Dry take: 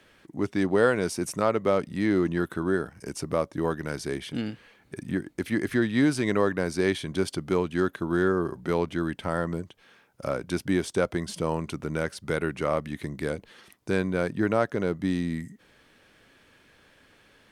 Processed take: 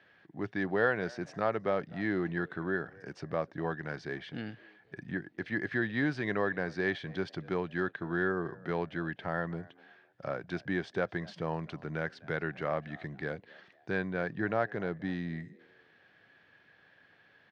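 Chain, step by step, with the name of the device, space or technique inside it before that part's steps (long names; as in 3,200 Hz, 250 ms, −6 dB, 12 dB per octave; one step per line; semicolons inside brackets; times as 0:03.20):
frequency-shifting delay pedal into a guitar cabinet (echo with shifted repeats 252 ms, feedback 36%, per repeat +100 Hz, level −24 dB; loudspeaker in its box 100–4,600 Hz, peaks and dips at 110 Hz +4 dB, 160 Hz +4 dB, 250 Hz −3 dB, 740 Hz +7 dB, 1,700 Hz +10 dB)
level −8.5 dB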